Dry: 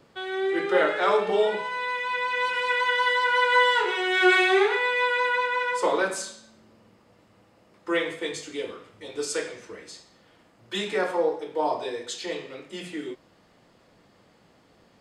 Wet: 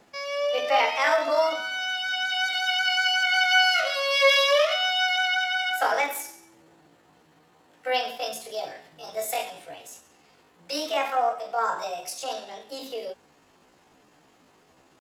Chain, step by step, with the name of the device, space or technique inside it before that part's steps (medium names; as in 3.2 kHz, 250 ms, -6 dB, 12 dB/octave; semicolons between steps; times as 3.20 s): chipmunk voice (pitch shift +7 st)